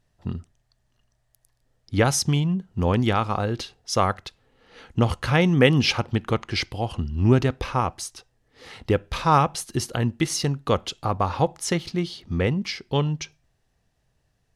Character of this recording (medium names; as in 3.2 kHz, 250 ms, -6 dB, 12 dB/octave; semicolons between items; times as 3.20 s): noise floor -70 dBFS; spectral tilt -5.0 dB/octave